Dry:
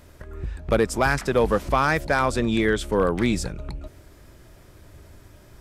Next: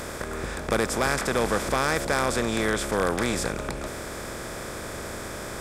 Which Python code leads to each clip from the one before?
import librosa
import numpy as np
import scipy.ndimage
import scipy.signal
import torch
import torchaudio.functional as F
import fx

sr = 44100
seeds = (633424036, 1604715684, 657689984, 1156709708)

y = fx.bin_compress(x, sr, power=0.4)
y = fx.high_shelf(y, sr, hz=3800.0, db=9.5)
y = y * 10.0 ** (-9.0 / 20.0)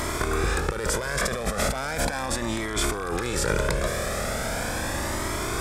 y = fx.over_compress(x, sr, threshold_db=-30.0, ratio=-1.0)
y = fx.comb_cascade(y, sr, direction='rising', hz=0.38)
y = y * 10.0 ** (8.0 / 20.0)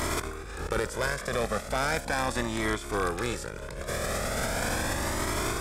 y = fx.over_compress(x, sr, threshold_db=-30.0, ratio=-0.5)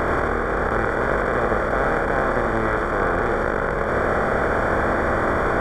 y = fx.bin_compress(x, sr, power=0.2)
y = scipy.signal.savgol_filter(y, 41, 4, mode='constant')
y = y + 10.0 ** (-4.0 / 20.0) * np.pad(y, (int(81 * sr / 1000.0), 0))[:len(y)]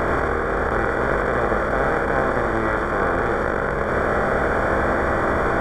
y = fx.doubler(x, sr, ms=15.0, db=-11.5)